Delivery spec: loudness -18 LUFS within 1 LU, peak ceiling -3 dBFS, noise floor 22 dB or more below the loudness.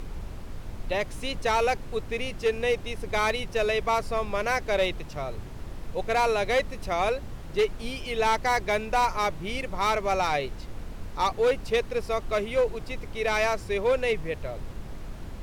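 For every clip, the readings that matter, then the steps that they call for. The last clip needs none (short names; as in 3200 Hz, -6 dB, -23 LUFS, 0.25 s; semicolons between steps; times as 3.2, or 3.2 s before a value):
clipped 1.0%; flat tops at -17.5 dBFS; noise floor -40 dBFS; noise floor target -50 dBFS; loudness -27.5 LUFS; peak -17.5 dBFS; loudness target -18.0 LUFS
-> clip repair -17.5 dBFS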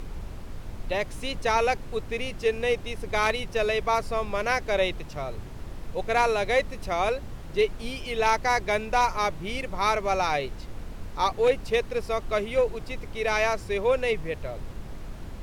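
clipped 0.0%; noise floor -40 dBFS; noise floor target -49 dBFS
-> noise print and reduce 9 dB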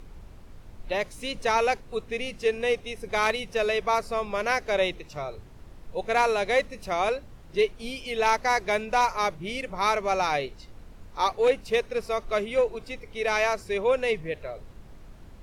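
noise floor -48 dBFS; noise floor target -49 dBFS
-> noise print and reduce 6 dB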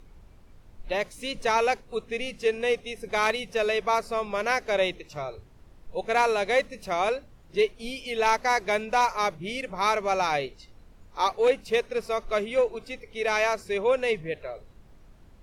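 noise floor -53 dBFS; loudness -27.0 LUFS; peak -10.0 dBFS; loudness target -18.0 LUFS
-> gain +9 dB; limiter -3 dBFS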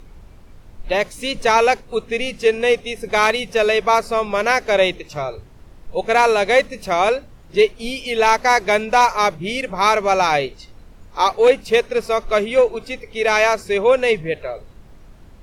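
loudness -18.0 LUFS; peak -3.0 dBFS; noise floor -44 dBFS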